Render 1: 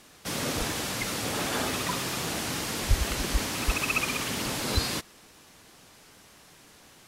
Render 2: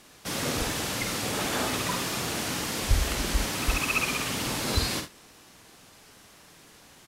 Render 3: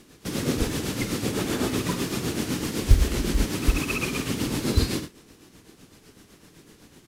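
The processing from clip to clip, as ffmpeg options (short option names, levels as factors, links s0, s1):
-af "aecho=1:1:50|75:0.447|0.188"
-af "tremolo=f=7.9:d=0.52,lowshelf=f=500:t=q:w=1.5:g=8,acrusher=bits=9:mode=log:mix=0:aa=0.000001"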